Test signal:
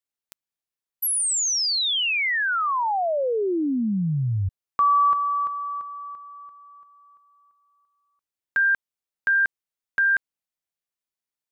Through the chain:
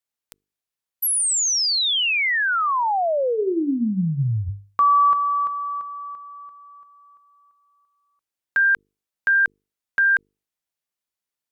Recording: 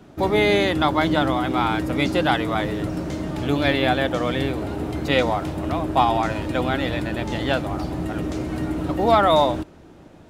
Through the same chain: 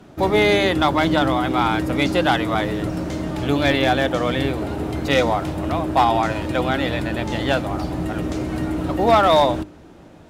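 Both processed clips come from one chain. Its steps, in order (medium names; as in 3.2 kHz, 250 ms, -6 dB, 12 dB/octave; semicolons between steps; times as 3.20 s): hum notches 50/100/150/200/250/300/350/400/450 Hz; one-sided clip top -12 dBFS; trim +2.5 dB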